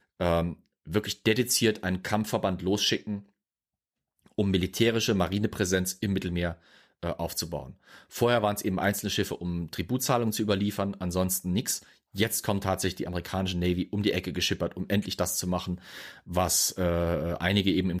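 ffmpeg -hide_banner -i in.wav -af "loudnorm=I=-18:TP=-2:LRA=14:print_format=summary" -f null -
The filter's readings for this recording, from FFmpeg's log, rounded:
Input Integrated:    -28.0 LUFS
Input True Peak:     -10.1 dBTP
Input LRA:             2.0 LU
Input Threshold:     -38.3 LUFS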